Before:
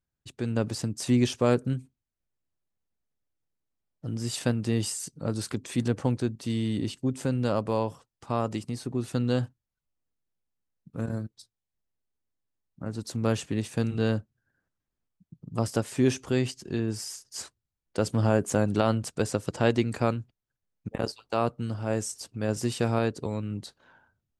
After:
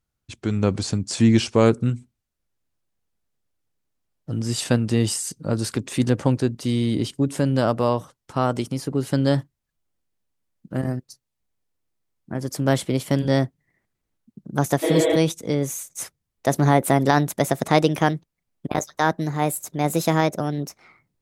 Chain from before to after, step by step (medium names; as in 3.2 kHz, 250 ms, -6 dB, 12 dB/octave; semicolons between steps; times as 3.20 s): gliding tape speed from 89% -> 141%; spectral replace 14.85–15.13 s, 300–4000 Hz after; trim +6.5 dB